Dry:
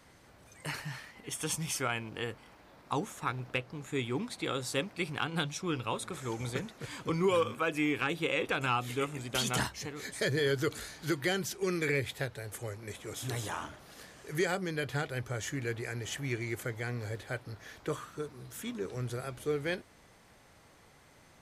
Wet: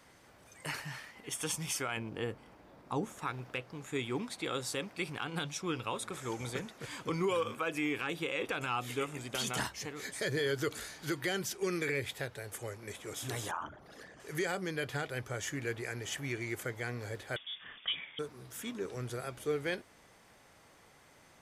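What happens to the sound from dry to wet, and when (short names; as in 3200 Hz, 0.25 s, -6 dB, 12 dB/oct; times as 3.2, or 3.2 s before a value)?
1.97–3.19 tilt shelf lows +5.5 dB, about 730 Hz
13.51–14.2 formant sharpening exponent 2
17.36–18.19 inverted band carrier 3500 Hz
whole clip: low shelf 180 Hz -6.5 dB; notch 4100 Hz, Q 21; limiter -23.5 dBFS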